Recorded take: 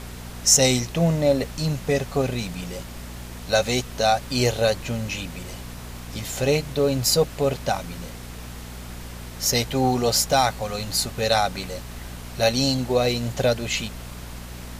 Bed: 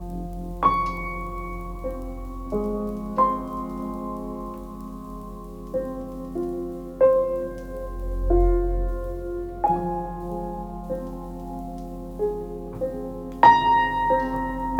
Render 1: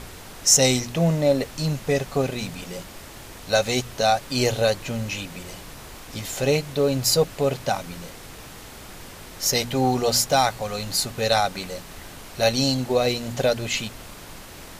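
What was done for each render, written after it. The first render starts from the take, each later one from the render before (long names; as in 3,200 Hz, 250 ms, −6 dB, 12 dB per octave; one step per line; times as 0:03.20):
hum removal 60 Hz, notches 4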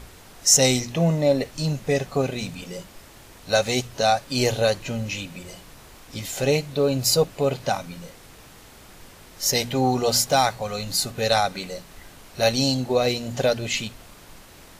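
noise reduction from a noise print 6 dB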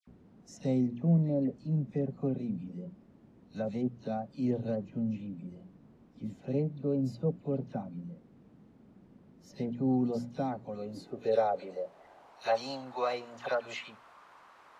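band-pass filter sweep 210 Hz → 1,100 Hz, 0:10.24–0:12.68
all-pass dispersion lows, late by 75 ms, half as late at 2,000 Hz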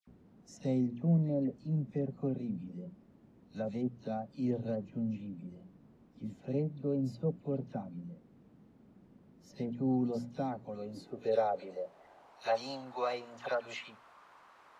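level −2.5 dB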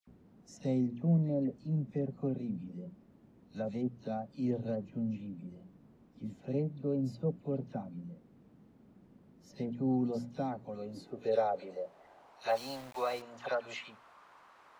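0:12.49–0:13.22: centre clipping without the shift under −46 dBFS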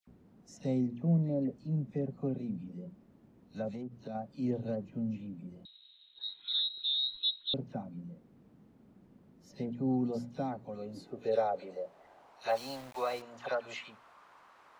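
0:03.68–0:04.15: downward compressor, threshold −37 dBFS
0:05.65–0:07.54: voice inversion scrambler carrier 4,000 Hz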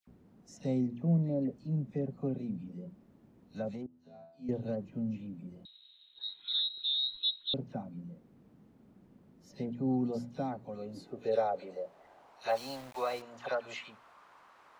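0:03.86–0:04.49: tuned comb filter 83 Hz, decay 0.61 s, mix 100%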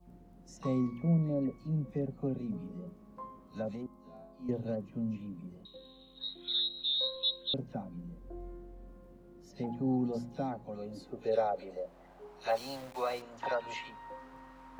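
mix in bed −26.5 dB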